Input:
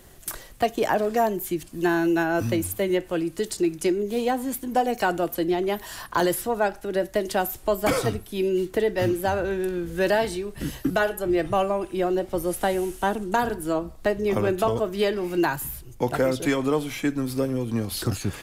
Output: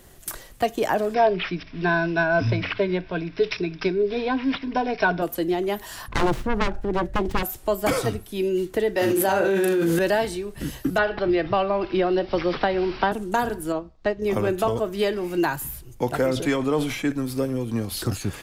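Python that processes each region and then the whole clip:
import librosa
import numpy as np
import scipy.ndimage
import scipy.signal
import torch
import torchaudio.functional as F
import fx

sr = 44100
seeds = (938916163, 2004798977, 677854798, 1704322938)

y = fx.chain(x, sr, fx.ripple_eq(per_octave=1.6, db=14),
    fx.resample_bad(factor=4, down='none', up='filtered'), at=(1.14, 5.22))
y = fx.chain(y, sr, fx.self_delay(depth_ms=0.82),
    fx.riaa(side='playback'), at=(6.08, 7.43))
y = fx.chain(y, sr, fx.highpass(hz=220.0, slope=12),
    fx.doubler(ms=36.0, db=-4.0),
    fx.env_flatten(amount_pct=100), at=(8.96, 9.99))
y = fx.chain(y, sr, fx.peak_eq(hz=1900.0, db=3.0, octaves=2.4),
    fx.resample_bad(factor=4, down='none', up='filtered'),
    fx.band_squash(depth_pct=100), at=(10.98, 13.12))
y = fx.chain(y, sr, fx.lowpass(hz=5700.0, slope=24),
    fx.upward_expand(threshold_db=-43.0, expansion=1.5), at=(13.72, 14.22))
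y = fx.chain(y, sr, fx.high_shelf(hz=8400.0, db=-7.0),
    fx.sustainer(db_per_s=56.0), at=(16.26, 17.12))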